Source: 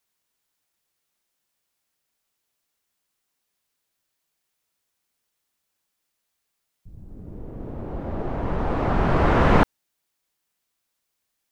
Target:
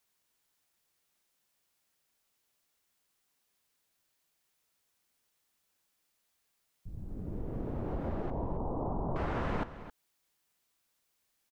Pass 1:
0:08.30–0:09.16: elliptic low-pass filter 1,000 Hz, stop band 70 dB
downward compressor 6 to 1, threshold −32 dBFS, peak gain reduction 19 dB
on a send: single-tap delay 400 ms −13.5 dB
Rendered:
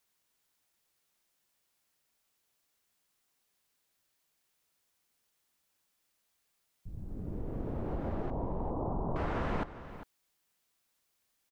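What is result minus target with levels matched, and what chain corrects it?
echo 134 ms late
0:08.30–0:09.16: elliptic low-pass filter 1,000 Hz, stop band 70 dB
downward compressor 6 to 1, threshold −32 dBFS, peak gain reduction 19 dB
on a send: single-tap delay 266 ms −13.5 dB

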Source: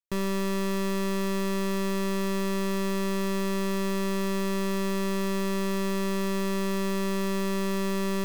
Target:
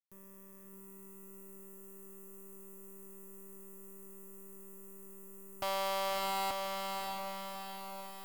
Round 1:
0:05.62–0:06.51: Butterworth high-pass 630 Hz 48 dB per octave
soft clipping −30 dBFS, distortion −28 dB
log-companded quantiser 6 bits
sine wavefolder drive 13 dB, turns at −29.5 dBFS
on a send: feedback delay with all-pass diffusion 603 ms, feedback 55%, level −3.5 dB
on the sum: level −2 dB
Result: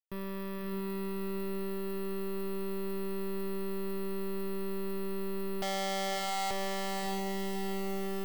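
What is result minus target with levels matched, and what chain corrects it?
soft clipping: distortion −8 dB
0:05.62–0:06.51: Butterworth high-pass 630 Hz 48 dB per octave
soft clipping −37 dBFS, distortion −20 dB
log-companded quantiser 6 bits
sine wavefolder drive 13 dB, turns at −29.5 dBFS
on a send: feedback delay with all-pass diffusion 603 ms, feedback 55%, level −3.5 dB
on the sum: level −2 dB

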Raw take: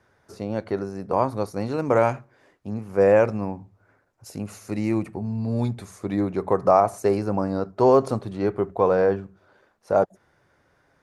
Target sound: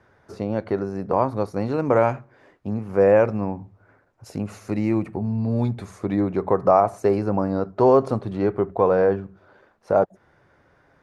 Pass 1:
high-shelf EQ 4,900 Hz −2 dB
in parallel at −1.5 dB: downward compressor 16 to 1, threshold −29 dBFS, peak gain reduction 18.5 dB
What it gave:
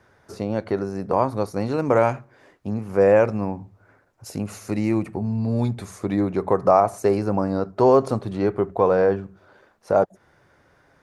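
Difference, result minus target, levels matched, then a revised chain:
8,000 Hz band +7.5 dB
high-shelf EQ 4,900 Hz −13 dB
in parallel at −1.5 dB: downward compressor 16 to 1, threshold −29 dBFS, peak gain reduction 18 dB

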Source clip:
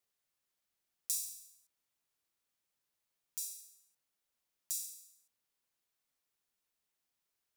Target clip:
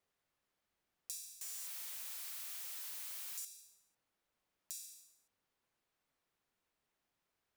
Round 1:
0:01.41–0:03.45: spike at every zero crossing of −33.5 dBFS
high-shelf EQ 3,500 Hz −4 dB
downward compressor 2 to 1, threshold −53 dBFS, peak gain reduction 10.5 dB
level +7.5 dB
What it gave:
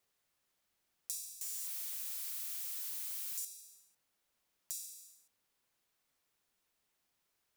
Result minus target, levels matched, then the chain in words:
4,000 Hz band −3.0 dB
0:01.41–0:03.45: spike at every zero crossing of −33.5 dBFS
high-shelf EQ 3,500 Hz −14 dB
downward compressor 2 to 1, threshold −53 dBFS, peak gain reduction 6 dB
level +7.5 dB

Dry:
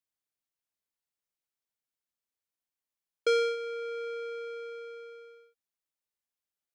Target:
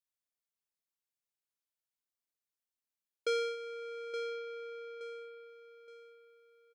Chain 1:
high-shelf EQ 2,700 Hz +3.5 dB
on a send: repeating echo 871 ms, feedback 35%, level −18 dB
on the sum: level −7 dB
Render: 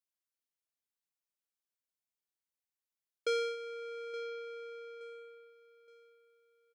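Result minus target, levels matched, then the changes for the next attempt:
echo-to-direct −6.5 dB
change: repeating echo 871 ms, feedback 35%, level −11.5 dB

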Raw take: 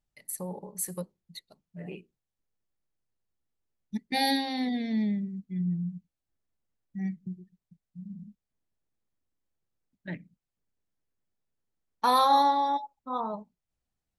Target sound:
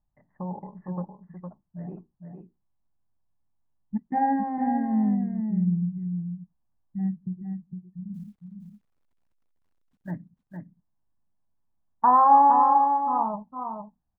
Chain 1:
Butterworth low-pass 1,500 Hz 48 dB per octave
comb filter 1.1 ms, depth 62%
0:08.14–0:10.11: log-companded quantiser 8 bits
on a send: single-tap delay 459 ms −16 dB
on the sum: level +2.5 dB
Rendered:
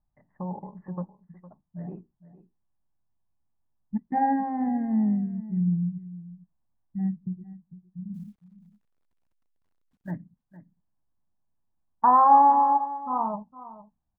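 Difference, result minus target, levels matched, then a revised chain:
echo-to-direct −10 dB
Butterworth low-pass 1,500 Hz 48 dB per octave
comb filter 1.1 ms, depth 62%
0:08.14–0:10.11: log-companded quantiser 8 bits
on a send: single-tap delay 459 ms −6 dB
on the sum: level +2.5 dB

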